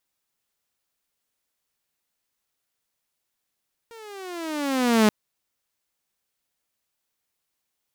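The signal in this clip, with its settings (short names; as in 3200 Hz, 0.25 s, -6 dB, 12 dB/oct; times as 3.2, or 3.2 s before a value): gliding synth tone saw, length 1.18 s, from 468 Hz, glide -14 st, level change +28.5 dB, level -11 dB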